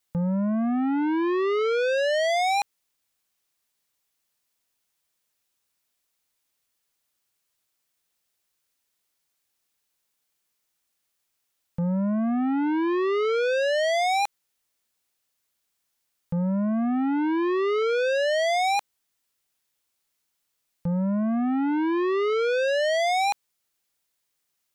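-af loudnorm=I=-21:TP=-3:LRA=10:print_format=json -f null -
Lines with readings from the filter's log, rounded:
"input_i" : "-24.2",
"input_tp" : "-19.7",
"input_lra" : "4.5",
"input_thresh" : "-34.4",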